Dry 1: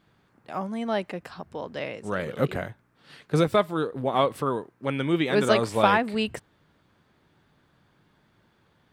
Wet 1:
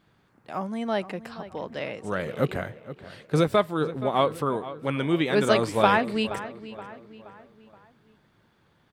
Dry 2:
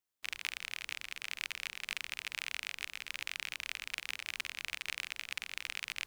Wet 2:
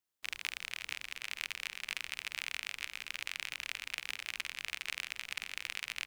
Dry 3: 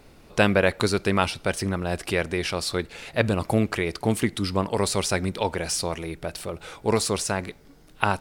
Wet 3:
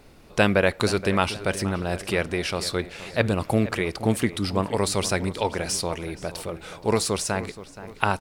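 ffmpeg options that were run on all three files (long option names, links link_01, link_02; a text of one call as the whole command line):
ffmpeg -i in.wav -filter_complex "[0:a]asplit=2[link_01][link_02];[link_02]adelay=474,lowpass=frequency=3300:poles=1,volume=-14.5dB,asplit=2[link_03][link_04];[link_04]adelay=474,lowpass=frequency=3300:poles=1,volume=0.47,asplit=2[link_05][link_06];[link_06]adelay=474,lowpass=frequency=3300:poles=1,volume=0.47,asplit=2[link_07][link_08];[link_08]adelay=474,lowpass=frequency=3300:poles=1,volume=0.47[link_09];[link_01][link_03][link_05][link_07][link_09]amix=inputs=5:normalize=0" out.wav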